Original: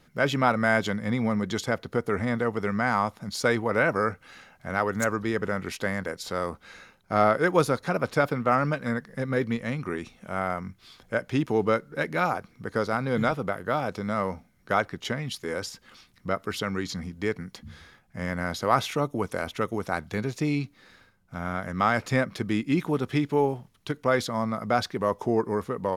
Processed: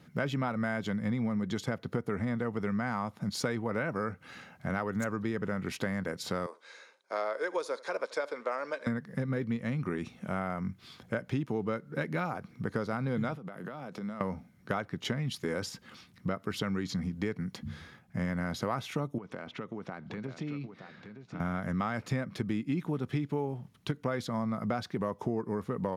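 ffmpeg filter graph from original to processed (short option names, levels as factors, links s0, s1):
-filter_complex "[0:a]asettb=1/sr,asplit=3[s0][s1][s2];[s0]atrim=end=6.464[s3];[s1]atrim=start=6.46:end=8.87,asetpts=PTS-STARTPTS,afade=t=in:d=0.004:c=qsin,afade=t=out:st=2.406:d=0.004:c=qsin,highpass=f=480:w=0.5412,highpass=f=480:w=1.3066,equalizer=f=750:t=q:w=4:g=-10,equalizer=f=1300:t=q:w=4:g=-8,equalizer=f=1900:t=q:w=4:g=-4,equalizer=f=2800:t=q:w=4:g=-8,lowpass=f=9000:w=0.5412,lowpass=f=9000:w=1.3066,aecho=1:1:77:0.0668,atrim=end_sample=106281[s4];[s2]atrim=start=8.866[s5];[s3][s4]acrossfade=d=0.004:c1=hsin:c2=qsin[s6];[s6][s5]acrossfade=d=0.004:c1=qsin:c2=hsin,asettb=1/sr,asplit=3[s7][s8][s9];[s7]atrim=end=13.354[s10];[s8]atrim=start=13.35:end=14.21,asetpts=PTS-STARTPTS,afade=t=in:d=0.004:c=qsin,afade=t=out:st=0.856:d=0.004:c=qsin,highpass=f=140:w=0.5412,highpass=f=140:w=1.3066,acompressor=threshold=0.0126:ratio=16:attack=3.2:release=140:knee=1:detection=peak[s11];[s9]atrim=start=14.206[s12];[s10][s11]acrossfade=d=0.004:c1=hsin:c2=qsin[s13];[s13][s12]acrossfade=d=0.004:c1=qsin:c2=hsin,asettb=1/sr,asplit=3[s14][s15][s16];[s14]atrim=end=19.184[s17];[s15]atrim=start=19.18:end=21.4,asetpts=PTS-STARTPTS,afade=t=in:d=0.004:c=qsin,afade=t=out:st=2.216:d=0.004:c=qsin,acompressor=threshold=0.0126:ratio=5:attack=3.2:release=140:knee=1:detection=peak,highpass=150,lowpass=4000,aecho=1:1:920:0.355,atrim=end_sample=97902[s18];[s16]atrim=start=21.396[s19];[s17][s18]acrossfade=d=0.004:c1=hsin:c2=qsin[s20];[s20][s19]acrossfade=d=0.004:c1=qsin:c2=hsin,highpass=130,bass=f=250:g=10,treble=f=4000:g=-3,acompressor=threshold=0.0355:ratio=6"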